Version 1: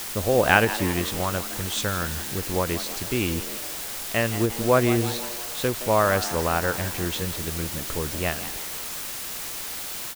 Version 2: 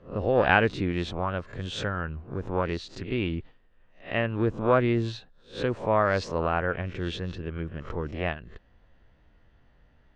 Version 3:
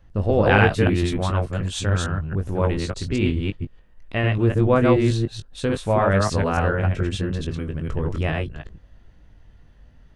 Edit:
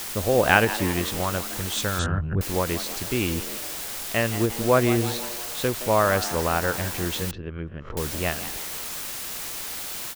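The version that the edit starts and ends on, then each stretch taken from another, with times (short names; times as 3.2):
1
1.99–2.41 from 3
7.31–7.97 from 2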